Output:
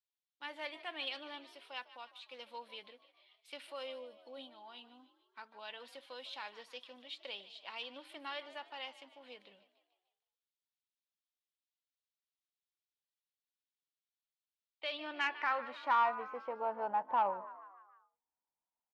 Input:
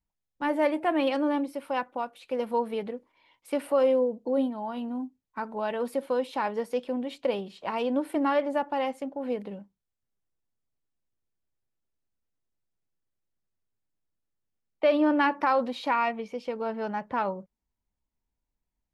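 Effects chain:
band-pass filter sweep 3,600 Hz → 890 Hz, 0:14.92–0:16.21
echo with shifted repeats 150 ms, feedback 54%, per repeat +57 Hz, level −16 dB
soft clipping −22 dBFS, distortion −21 dB
level +1 dB

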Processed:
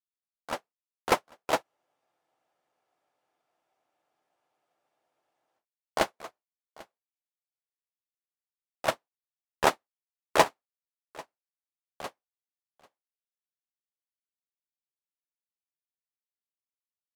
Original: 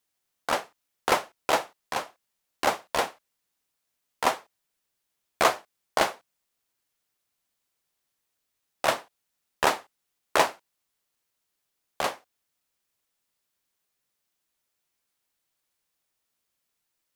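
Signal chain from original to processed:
low-shelf EQ 450 Hz +5.5 dB
on a send: single-tap delay 793 ms −9 dB
on the sum: frozen spectrum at 0:01.65, 3.92 s
expander for the loud parts 2.5 to 1, over −41 dBFS
level +1 dB

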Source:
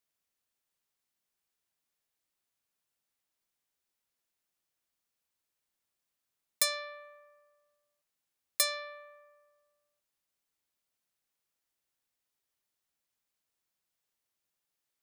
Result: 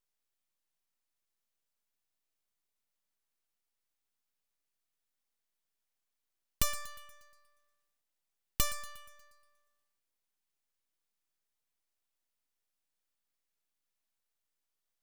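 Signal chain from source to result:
feedback echo with a high-pass in the loop 119 ms, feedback 52%, high-pass 330 Hz, level −16 dB
full-wave rectification

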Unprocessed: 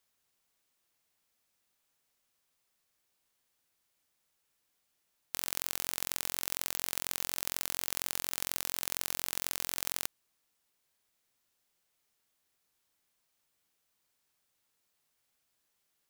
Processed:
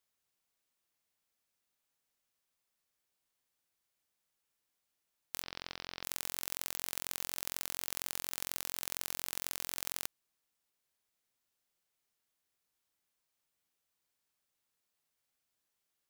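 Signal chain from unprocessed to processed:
0:05.43–0:06.03: Butterworth low-pass 5,500 Hz 72 dB per octave
in parallel at −11 dB: bit reduction 5 bits
on the sum: level −6 dB

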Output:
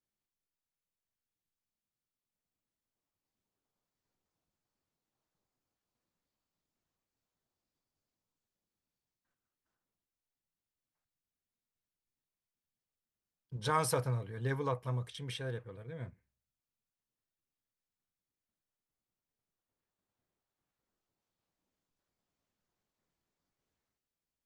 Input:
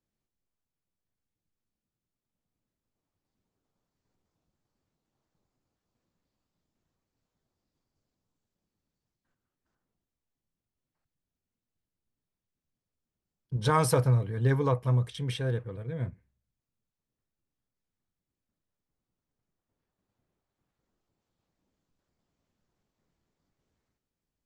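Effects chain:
low-shelf EQ 440 Hz −7.5 dB
level −4 dB

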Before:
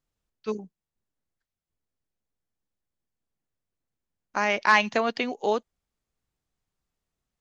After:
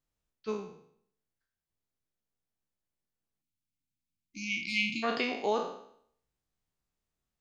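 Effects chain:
peak hold with a decay on every bin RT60 0.64 s
0:04.61–0:05.24: notch filter 5,900 Hz, Q 5.9
0:03.42–0:05.03: time-frequency box erased 340–2,100 Hz
level −5.5 dB

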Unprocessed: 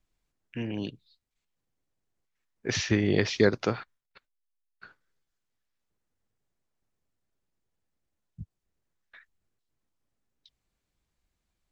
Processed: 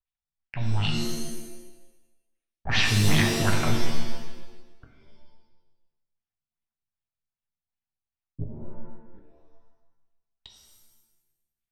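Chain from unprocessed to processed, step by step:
gain on one half-wave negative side −12 dB
elliptic band-stop filter 160–710 Hz
high-shelf EQ 5,400 Hz +6.5 dB
leveller curve on the samples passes 5
auto-filter low-pass sine 2.6 Hz 240–3,300 Hz
reverb with rising layers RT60 1 s, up +7 semitones, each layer −2 dB, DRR 2.5 dB
level −5 dB

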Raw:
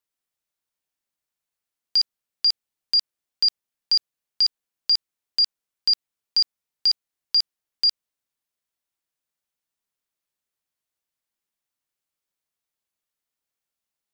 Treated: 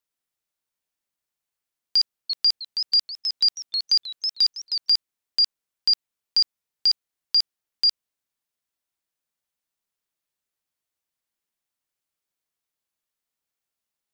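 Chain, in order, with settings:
0:01.98–0:04.90: feedback echo with a swinging delay time 318 ms, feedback 34%, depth 174 cents, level −7 dB

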